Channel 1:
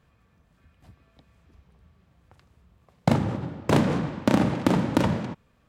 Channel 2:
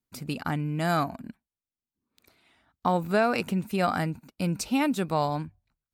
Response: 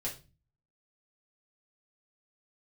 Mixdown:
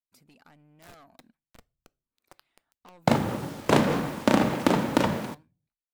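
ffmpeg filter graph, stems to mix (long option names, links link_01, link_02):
-filter_complex "[0:a]acrusher=bits=7:mix=0:aa=0.000001,volume=0.5dB,asplit=2[link_01][link_02];[link_02]volume=-19.5dB[link_03];[1:a]asoftclip=type=tanh:threshold=-28dB,acompressor=threshold=-35dB:ratio=4,volume=-16.5dB[link_04];[2:a]atrim=start_sample=2205[link_05];[link_03][link_05]afir=irnorm=-1:irlink=0[link_06];[link_01][link_04][link_06]amix=inputs=3:normalize=0,equalizer=frequency=100:width_type=o:width=2.4:gain=-9,dynaudnorm=framelen=360:gausssize=7:maxgain=3.5dB"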